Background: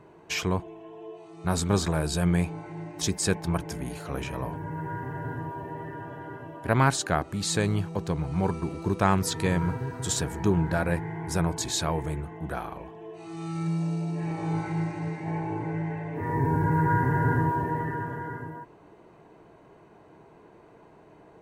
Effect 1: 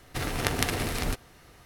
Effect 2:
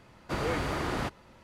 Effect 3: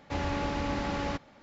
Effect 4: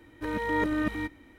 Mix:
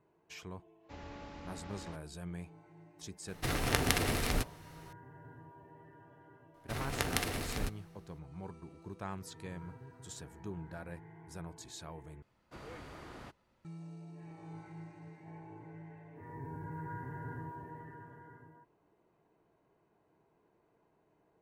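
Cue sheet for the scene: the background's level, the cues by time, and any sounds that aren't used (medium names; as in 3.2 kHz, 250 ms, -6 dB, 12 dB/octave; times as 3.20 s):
background -19.5 dB
0.79 s: add 3 -17 dB, fades 0.10 s
3.28 s: add 1 -2.5 dB
6.54 s: add 1 -7.5 dB + three bands expanded up and down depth 40%
12.22 s: replace with 2 -18 dB
not used: 4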